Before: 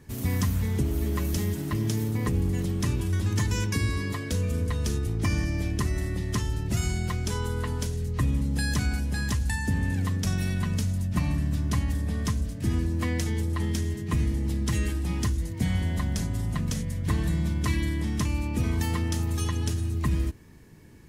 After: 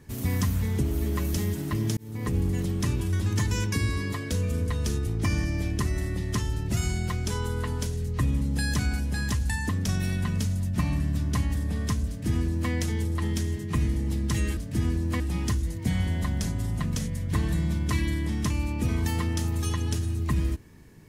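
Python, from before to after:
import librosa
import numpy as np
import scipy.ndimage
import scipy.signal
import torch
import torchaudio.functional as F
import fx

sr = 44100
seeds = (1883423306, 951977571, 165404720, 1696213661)

y = fx.edit(x, sr, fx.fade_in_span(start_s=1.97, length_s=0.39),
    fx.cut(start_s=9.69, length_s=0.38),
    fx.duplicate(start_s=12.46, length_s=0.63, to_s=14.95), tone=tone)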